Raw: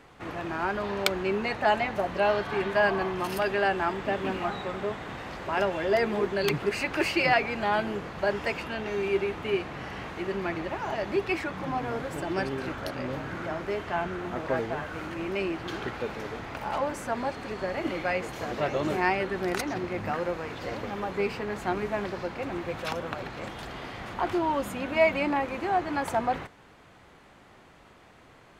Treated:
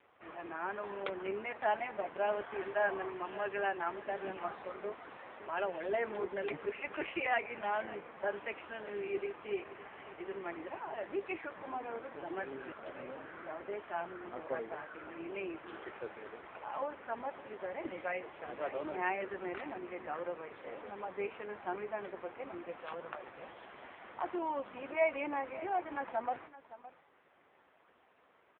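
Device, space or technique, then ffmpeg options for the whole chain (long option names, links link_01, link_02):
satellite phone: -af "highpass=330,lowpass=3000,aecho=1:1:565:0.158,volume=-7.5dB" -ar 8000 -c:a libopencore_amrnb -b:a 5900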